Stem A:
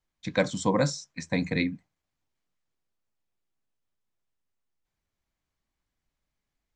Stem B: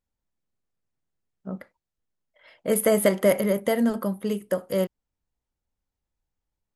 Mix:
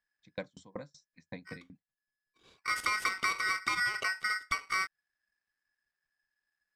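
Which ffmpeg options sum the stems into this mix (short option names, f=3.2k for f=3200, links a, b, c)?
-filter_complex "[0:a]aeval=exprs='val(0)*pow(10,-33*if(lt(mod(5.3*n/s,1),2*abs(5.3)/1000),1-mod(5.3*n/s,1)/(2*abs(5.3)/1000),(mod(5.3*n/s,1)-2*abs(5.3)/1000)/(1-2*abs(5.3)/1000))/20)':c=same,volume=-12dB,asplit=2[a][b];[1:a]aeval=exprs='val(0)*sgn(sin(2*PI*1700*n/s))':c=same,volume=-2.5dB[c];[b]apad=whole_len=297753[d];[c][d]sidechaincompress=threshold=-53dB:ratio=4:attack=5.6:release=1260[e];[a][e]amix=inputs=2:normalize=0,lowpass=5.9k,asoftclip=type=hard:threshold=-13.5dB,acompressor=threshold=-28dB:ratio=6"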